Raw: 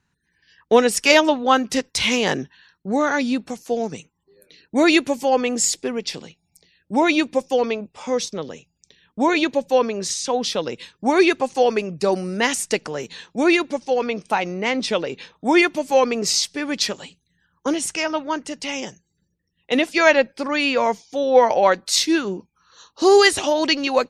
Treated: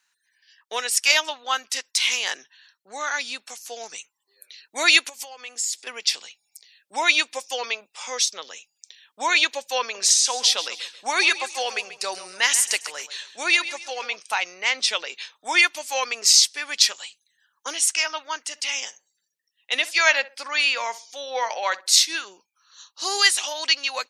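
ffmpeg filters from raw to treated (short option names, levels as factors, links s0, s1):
-filter_complex "[0:a]asettb=1/sr,asplit=3[s0][s1][s2];[s0]atrim=end=5.094[s3];[s1]atrim=start=5.09:end=5.87,asetpts=PTS-STARTPTS,afade=t=in:d=0.004:c=qsin,afade=t=out:st=0.776:d=0.004:c=qsin,acompressor=threshold=0.0282:ratio=6:attack=3.2:release=140:knee=1:detection=peak[s4];[s2]atrim=start=5.866[s5];[s3][s4]acrossfade=d=0.004:c1=hsin:c2=qsin[s6];[s6][s5]acrossfade=d=0.004:c1=qsin:c2=hsin,asettb=1/sr,asplit=3[s7][s8][s9];[s7]atrim=end=9.814[s10];[s8]atrim=start=9.81:end=14.16,asetpts=PTS-STARTPTS,afade=t=in:d=0.004:c=qsin,afade=t=out:st=4.346:d=0.004:c=qsin,aecho=1:1:136|272|408:0.2|0.0698|0.0244,atrim=end_sample=191835[s11];[s9]atrim=start=14.156[s12];[s10][s11]acrossfade=d=0.004:c1=hsin:c2=qsin[s13];[s13][s12]acrossfade=d=0.004:c1=qsin:c2=hsin,asettb=1/sr,asplit=3[s14][s15][s16];[s14]atrim=end=18.484[s17];[s15]atrim=start=18.48:end=22.25,asetpts=PTS-STARTPTS,afade=t=in:d=0.004:c=qsin,afade=t=out:st=3.766:d=0.004:c=qsin,asplit=2[s18][s19];[s19]adelay=64,lowpass=f=1300:p=1,volume=0.158,asplit=2[s20][s21];[s21]adelay=64,lowpass=f=1300:p=1,volume=0.29,asplit=2[s22][s23];[s23]adelay=64,lowpass=f=1300:p=1,volume=0.29[s24];[s18][s20][s22][s24]amix=inputs=4:normalize=0,atrim=end_sample=166257[s25];[s16]atrim=start=22.246[s26];[s17][s25]acrossfade=d=0.004:c1=hsin:c2=qsin[s27];[s27][s26]acrossfade=d=0.004:c1=qsin:c2=hsin,highshelf=f=2100:g=11,dynaudnorm=f=540:g=7:m=3.76,highpass=980,volume=0.891"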